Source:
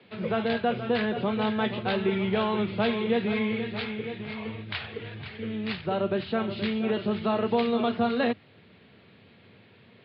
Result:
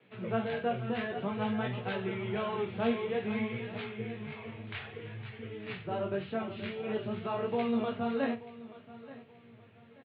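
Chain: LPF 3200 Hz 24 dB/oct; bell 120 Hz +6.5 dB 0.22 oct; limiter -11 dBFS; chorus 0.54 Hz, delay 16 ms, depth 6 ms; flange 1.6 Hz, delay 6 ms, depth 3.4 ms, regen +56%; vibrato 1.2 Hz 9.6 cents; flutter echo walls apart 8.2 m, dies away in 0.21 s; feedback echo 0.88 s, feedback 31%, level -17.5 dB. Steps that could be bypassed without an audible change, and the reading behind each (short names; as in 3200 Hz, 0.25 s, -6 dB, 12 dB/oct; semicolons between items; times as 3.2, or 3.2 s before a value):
limiter -11 dBFS: input peak -13.0 dBFS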